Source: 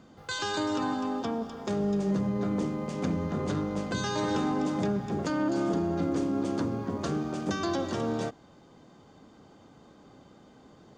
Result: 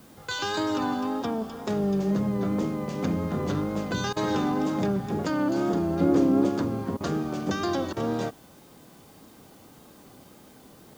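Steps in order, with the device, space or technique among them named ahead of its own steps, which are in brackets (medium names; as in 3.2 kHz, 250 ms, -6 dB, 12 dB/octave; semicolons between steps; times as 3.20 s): worn cassette (low-pass 7.4 kHz; wow and flutter; level dips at 4.13/6.97/7.93 s, 34 ms -17 dB; white noise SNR 30 dB); 6.01–6.49 s: peaking EQ 380 Hz +6 dB 2.9 oct; trim +2.5 dB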